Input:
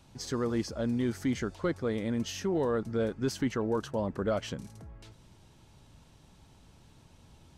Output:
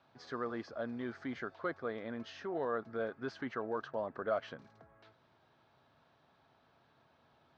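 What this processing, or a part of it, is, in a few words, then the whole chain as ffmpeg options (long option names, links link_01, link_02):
kitchen radio: -af "highpass=190,equalizer=frequency=190:width_type=q:width=4:gain=-8,equalizer=frequency=310:width_type=q:width=4:gain=-4,equalizer=frequency=680:width_type=q:width=4:gain=8,equalizer=frequency=1200:width_type=q:width=4:gain=7,equalizer=frequency=1600:width_type=q:width=4:gain=7,equalizer=frequency=2900:width_type=q:width=4:gain=-4,lowpass=frequency=4100:width=0.5412,lowpass=frequency=4100:width=1.3066,volume=-7.5dB"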